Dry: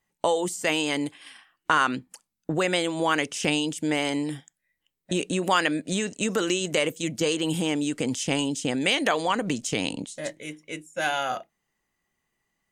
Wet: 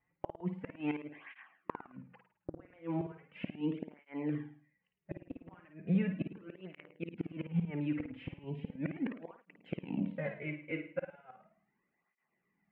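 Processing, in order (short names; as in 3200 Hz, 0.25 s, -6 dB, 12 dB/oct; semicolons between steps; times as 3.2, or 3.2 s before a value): elliptic low-pass 2400 Hz, stop band 60 dB; bell 180 Hz +9.5 dB 0.56 oct; compressor 3:1, threshold -29 dBFS, peak gain reduction 9.5 dB; flipped gate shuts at -22 dBFS, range -27 dB; flutter echo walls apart 9.2 m, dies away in 0.48 s; tape flanging out of phase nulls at 0.37 Hz, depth 5.3 ms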